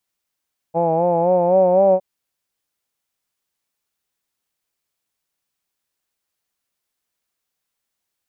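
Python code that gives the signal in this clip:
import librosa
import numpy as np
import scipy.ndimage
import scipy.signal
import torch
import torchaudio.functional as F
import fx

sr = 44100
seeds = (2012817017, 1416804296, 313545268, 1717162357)

y = fx.vowel(sr, seeds[0], length_s=1.26, word='hawed', hz=163.0, glide_st=3.0, vibrato_hz=3.9, vibrato_st=0.65)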